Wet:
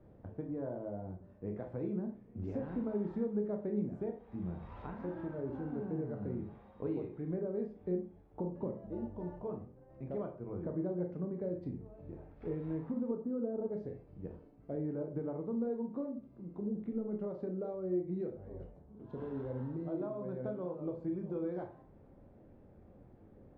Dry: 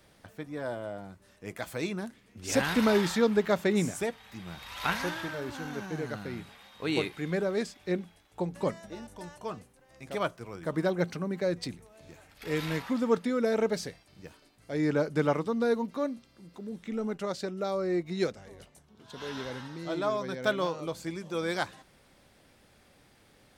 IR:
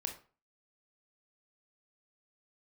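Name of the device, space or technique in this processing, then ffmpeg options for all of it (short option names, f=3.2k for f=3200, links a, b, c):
television next door: -filter_complex "[0:a]asettb=1/sr,asplit=3[a][b][c];[a]atrim=end=13.114[d];[b]atrim=start=13.11:end=13.69,asetpts=PTS-STARTPTS,afade=t=in:d=0.004:c=qsin,afade=t=out:st=0.576:d=0.004:c=qsin,lowpass=f=1.4k:w=0.5412,lowpass=f=1.4k:w=1.3066[e];[c]atrim=start=13.686[f];[d][e]acrossfade=d=0.004:c1=hsin:c2=qsin[g];[g][f]acrossfade=d=0.004:c1=qsin:c2=hsin,acompressor=threshold=-39dB:ratio=5,lowpass=530[h];[1:a]atrim=start_sample=2205[i];[h][i]afir=irnorm=-1:irlink=0,volume=5.5dB"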